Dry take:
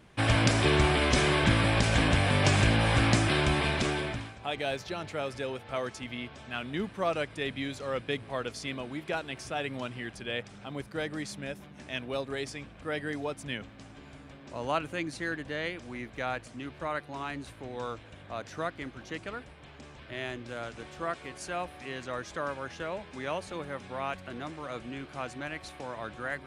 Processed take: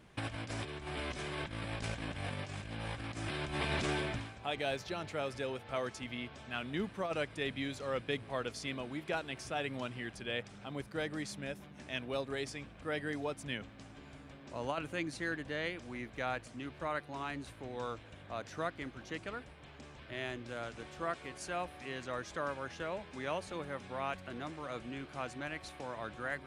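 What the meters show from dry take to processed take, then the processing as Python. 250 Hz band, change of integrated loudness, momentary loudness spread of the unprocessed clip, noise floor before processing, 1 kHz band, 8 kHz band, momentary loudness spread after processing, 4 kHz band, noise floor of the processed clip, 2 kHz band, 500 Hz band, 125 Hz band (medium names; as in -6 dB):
-8.5 dB, -8.5 dB, 17 LU, -51 dBFS, -7.0 dB, -10.0 dB, 7 LU, -9.0 dB, -54 dBFS, -8.0 dB, -6.0 dB, -12.5 dB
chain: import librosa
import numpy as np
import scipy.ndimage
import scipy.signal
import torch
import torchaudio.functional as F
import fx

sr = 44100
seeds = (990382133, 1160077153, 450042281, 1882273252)

y = fx.over_compress(x, sr, threshold_db=-29.0, ratio=-0.5)
y = y * librosa.db_to_amplitude(-6.0)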